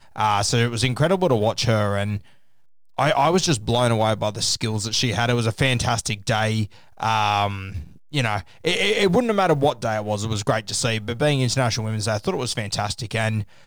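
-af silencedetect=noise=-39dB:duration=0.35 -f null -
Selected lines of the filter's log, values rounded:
silence_start: 2.28
silence_end: 2.98 | silence_duration: 0.70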